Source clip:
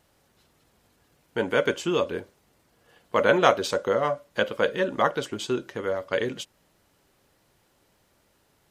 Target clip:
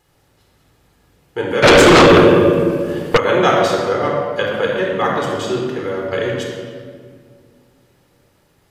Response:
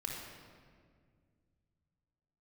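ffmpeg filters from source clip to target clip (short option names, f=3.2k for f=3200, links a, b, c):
-filter_complex "[1:a]atrim=start_sample=2205[a];[0:a][a]afir=irnorm=-1:irlink=0,asplit=3[b][c][d];[b]afade=t=out:st=1.62:d=0.02[e];[c]aeval=exprs='0.316*sin(PI/2*4.47*val(0)/0.316)':c=same,afade=t=in:st=1.62:d=0.02,afade=t=out:st=3.16:d=0.02[f];[d]afade=t=in:st=3.16:d=0.02[g];[e][f][g]amix=inputs=3:normalize=0,volume=6dB"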